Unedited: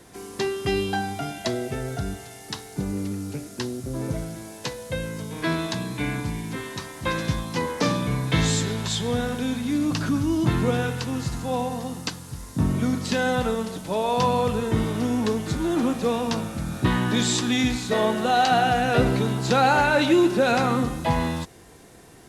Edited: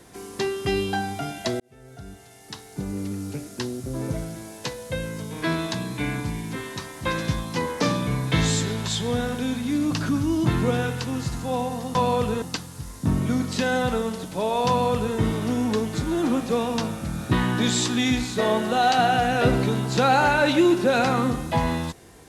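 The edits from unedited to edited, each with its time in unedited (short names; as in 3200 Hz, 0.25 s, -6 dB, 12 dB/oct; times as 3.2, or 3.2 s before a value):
1.6–3.25 fade in
14.21–14.68 copy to 11.95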